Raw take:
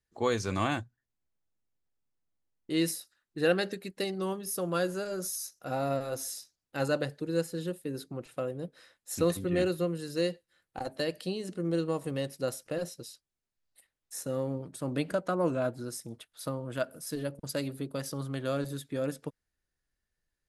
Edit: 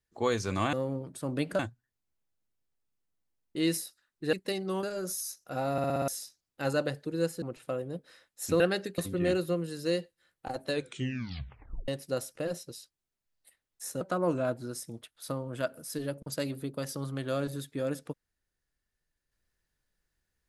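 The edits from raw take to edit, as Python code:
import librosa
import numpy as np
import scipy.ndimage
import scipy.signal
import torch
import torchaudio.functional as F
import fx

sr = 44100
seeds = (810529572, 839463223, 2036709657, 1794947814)

y = fx.edit(x, sr, fx.move(start_s=3.47, length_s=0.38, to_s=9.29),
    fx.cut(start_s=4.35, length_s=0.63),
    fx.stutter_over(start_s=5.87, slice_s=0.06, count=6),
    fx.cut(start_s=7.57, length_s=0.54),
    fx.tape_stop(start_s=10.98, length_s=1.21),
    fx.move(start_s=14.32, length_s=0.86, to_s=0.73), tone=tone)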